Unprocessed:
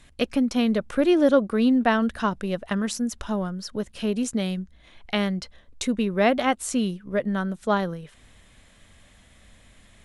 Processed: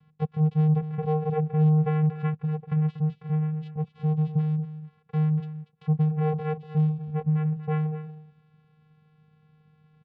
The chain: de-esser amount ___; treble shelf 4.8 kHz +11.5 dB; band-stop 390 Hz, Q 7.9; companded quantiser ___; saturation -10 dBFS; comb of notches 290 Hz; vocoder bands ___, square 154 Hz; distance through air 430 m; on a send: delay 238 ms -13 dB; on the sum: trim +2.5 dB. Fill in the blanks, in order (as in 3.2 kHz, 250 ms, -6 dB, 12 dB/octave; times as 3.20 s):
75%, 8-bit, 4